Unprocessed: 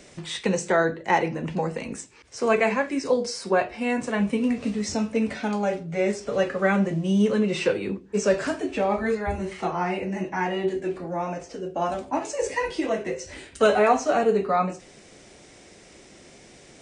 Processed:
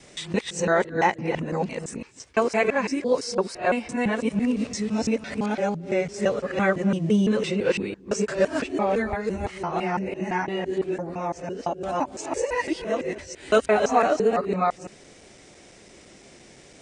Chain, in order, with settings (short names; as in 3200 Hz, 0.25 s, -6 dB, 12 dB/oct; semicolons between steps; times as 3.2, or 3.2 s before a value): local time reversal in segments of 0.169 s